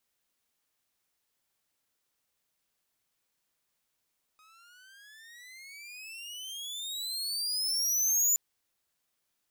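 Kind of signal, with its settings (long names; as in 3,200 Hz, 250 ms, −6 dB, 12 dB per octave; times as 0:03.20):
pitch glide with a swell saw, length 3.97 s, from 1,250 Hz, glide +30 semitones, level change +37 dB, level −18 dB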